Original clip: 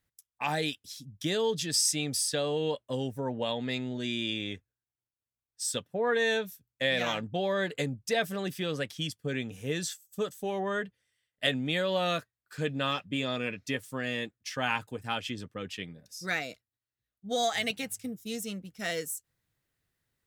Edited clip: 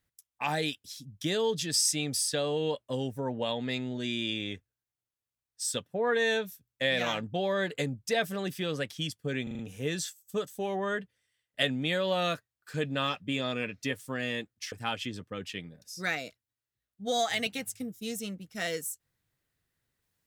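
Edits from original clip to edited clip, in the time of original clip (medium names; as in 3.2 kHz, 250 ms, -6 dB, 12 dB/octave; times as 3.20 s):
9.43 s: stutter 0.04 s, 5 plays
14.56–14.96 s: delete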